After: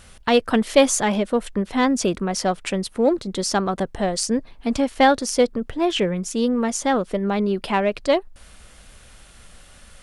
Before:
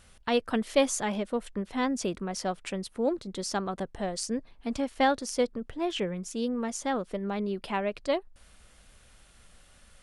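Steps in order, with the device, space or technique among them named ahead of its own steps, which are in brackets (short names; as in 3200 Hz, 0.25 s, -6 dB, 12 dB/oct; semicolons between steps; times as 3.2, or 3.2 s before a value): parallel distortion (in parallel at -12 dB: hard clip -26.5 dBFS, distortion -9 dB); on the sum: gain +8 dB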